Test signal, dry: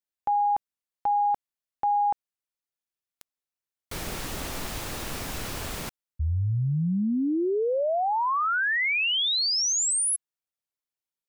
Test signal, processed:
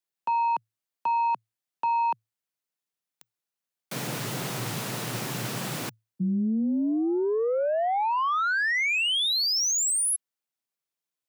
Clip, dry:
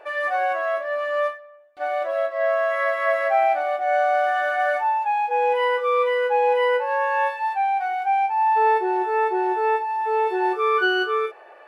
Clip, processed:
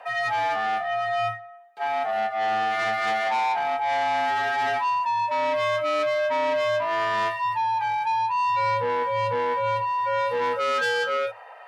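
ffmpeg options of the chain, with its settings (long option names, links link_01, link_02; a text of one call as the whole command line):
ffmpeg -i in.wav -af "asoftclip=type=tanh:threshold=-23dB,afreqshift=110,volume=2dB" out.wav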